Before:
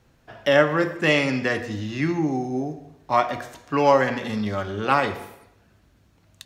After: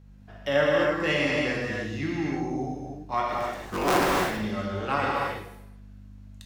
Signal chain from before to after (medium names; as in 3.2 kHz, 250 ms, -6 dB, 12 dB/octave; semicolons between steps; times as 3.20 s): 3.32–4.19 s: cycle switcher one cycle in 3, inverted; hum 50 Hz, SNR 19 dB; gated-style reverb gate 350 ms flat, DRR -3.5 dB; trim -9 dB